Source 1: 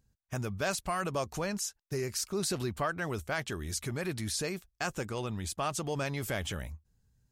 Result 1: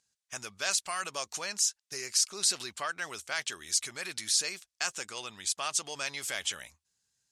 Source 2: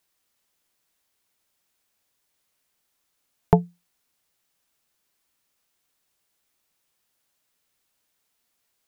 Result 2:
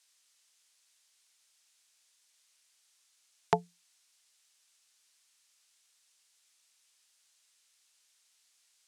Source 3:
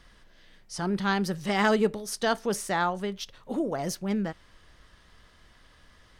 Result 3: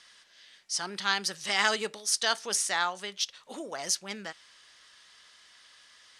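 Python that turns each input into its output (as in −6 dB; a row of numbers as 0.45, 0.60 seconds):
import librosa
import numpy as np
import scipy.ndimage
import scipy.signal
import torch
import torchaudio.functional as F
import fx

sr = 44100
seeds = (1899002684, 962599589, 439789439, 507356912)

y = fx.weighting(x, sr, curve='ITU-R 468')
y = y * 10.0 ** (-3.0 / 20.0)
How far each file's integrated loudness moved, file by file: +3.5, −10.0, −1.0 LU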